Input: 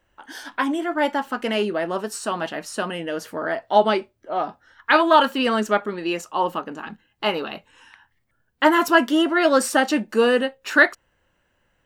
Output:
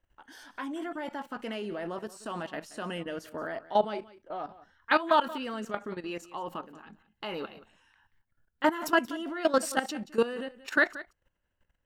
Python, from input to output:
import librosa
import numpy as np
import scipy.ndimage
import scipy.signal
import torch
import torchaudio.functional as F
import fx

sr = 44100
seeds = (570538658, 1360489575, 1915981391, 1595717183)

p1 = fx.low_shelf(x, sr, hz=95.0, db=11.0)
p2 = fx.level_steps(p1, sr, step_db=15)
p3 = p2 + fx.echo_single(p2, sr, ms=179, db=-17.5, dry=0)
y = p3 * 10.0 ** (-5.5 / 20.0)